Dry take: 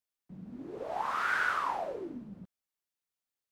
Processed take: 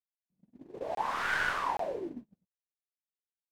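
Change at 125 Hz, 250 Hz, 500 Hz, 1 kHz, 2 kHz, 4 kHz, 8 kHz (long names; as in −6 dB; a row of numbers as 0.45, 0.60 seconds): −2.5, −1.5, +2.0, −0.5, 0.0, +3.5, +3.0 decibels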